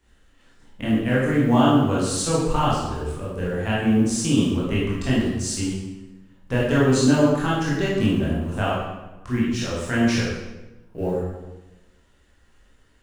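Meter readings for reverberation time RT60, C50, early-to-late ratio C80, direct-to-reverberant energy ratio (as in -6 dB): 1.1 s, -0.5 dB, 3.0 dB, -7.5 dB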